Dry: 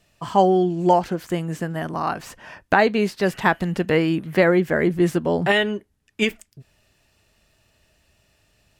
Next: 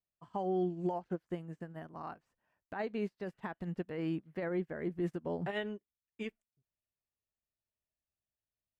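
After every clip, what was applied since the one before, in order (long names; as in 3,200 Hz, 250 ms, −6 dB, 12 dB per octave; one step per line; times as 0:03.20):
high-shelf EQ 2,600 Hz −10.5 dB
brickwall limiter −16 dBFS, peak gain reduction 11.5 dB
expander for the loud parts 2.5 to 1, over −39 dBFS
level −8.5 dB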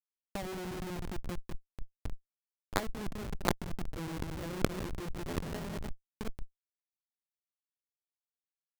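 bouncing-ball delay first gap 170 ms, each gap 0.65×, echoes 5
comparator with hysteresis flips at −33.5 dBFS
compressor whose output falls as the input rises −46 dBFS, ratio −0.5
level +13 dB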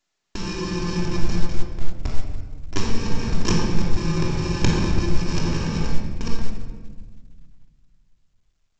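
samples in bit-reversed order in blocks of 64 samples
rectangular room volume 1,500 cubic metres, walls mixed, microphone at 3.1 metres
level +9 dB
mu-law 128 kbit/s 16,000 Hz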